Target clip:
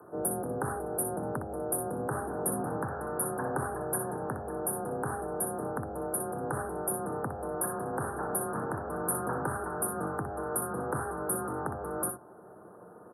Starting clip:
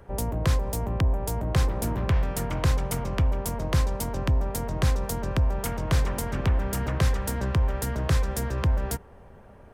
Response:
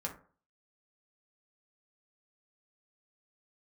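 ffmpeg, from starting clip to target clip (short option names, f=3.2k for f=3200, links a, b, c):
-filter_complex "[0:a]highpass=250,highshelf=f=2.4k:g=11,alimiter=limit=-13.5dB:level=0:latency=1:release=285,afreqshift=40,asplit=2[a][b];[b]adelay=45,volume=-8dB[c];[a][c]amix=inputs=2:normalize=0,asplit=2[d][e];[1:a]atrim=start_sample=2205[f];[e][f]afir=irnorm=-1:irlink=0,volume=-17.5dB[g];[d][g]amix=inputs=2:normalize=0,asetrate=32667,aresample=44100,asuperstop=centerf=4100:order=20:qfactor=0.53"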